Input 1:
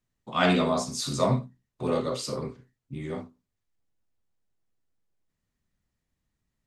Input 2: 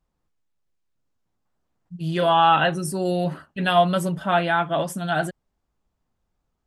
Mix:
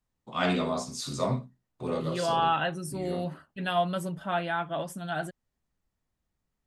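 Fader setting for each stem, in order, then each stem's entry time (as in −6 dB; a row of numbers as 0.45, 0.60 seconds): −4.5, −9.0 decibels; 0.00, 0.00 seconds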